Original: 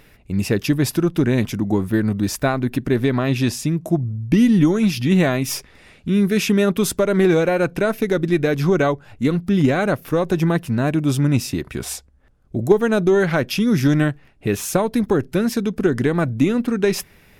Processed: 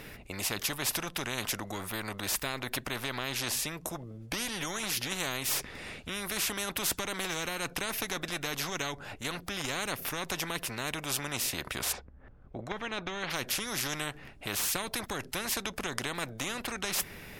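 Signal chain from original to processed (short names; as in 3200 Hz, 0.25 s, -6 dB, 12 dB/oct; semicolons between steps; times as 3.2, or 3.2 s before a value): 11.91–13.29 LPF 1700 Hz -> 3200 Hz 12 dB/oct; spectral compressor 4:1; gain -6 dB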